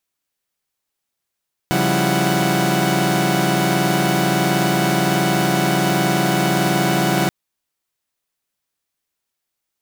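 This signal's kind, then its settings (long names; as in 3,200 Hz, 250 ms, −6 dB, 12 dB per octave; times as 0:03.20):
held notes C#3/F3/G3/E4/F#5 saw, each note −19.5 dBFS 5.58 s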